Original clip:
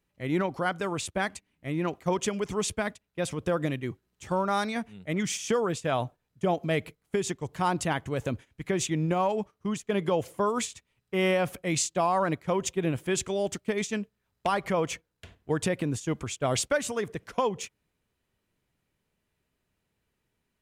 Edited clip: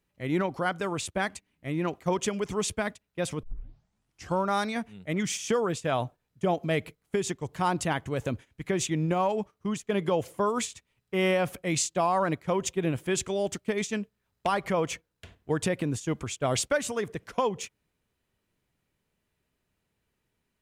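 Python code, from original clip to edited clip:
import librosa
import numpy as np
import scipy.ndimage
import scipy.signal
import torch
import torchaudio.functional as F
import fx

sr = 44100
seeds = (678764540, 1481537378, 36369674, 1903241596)

y = fx.edit(x, sr, fx.tape_start(start_s=3.43, length_s=0.93), tone=tone)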